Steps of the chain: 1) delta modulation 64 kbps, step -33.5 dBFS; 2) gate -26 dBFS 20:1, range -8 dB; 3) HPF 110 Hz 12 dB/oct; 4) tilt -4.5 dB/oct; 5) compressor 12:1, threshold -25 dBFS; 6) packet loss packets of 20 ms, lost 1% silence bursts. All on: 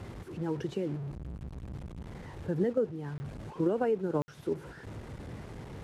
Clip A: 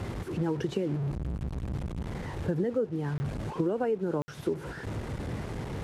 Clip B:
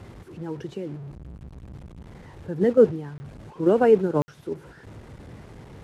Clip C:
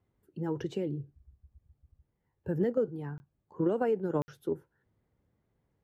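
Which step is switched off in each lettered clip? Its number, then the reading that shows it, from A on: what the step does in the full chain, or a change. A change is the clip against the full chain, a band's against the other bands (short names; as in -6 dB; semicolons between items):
2, crest factor change -1.5 dB; 5, mean gain reduction 2.0 dB; 1, 125 Hz band -1.5 dB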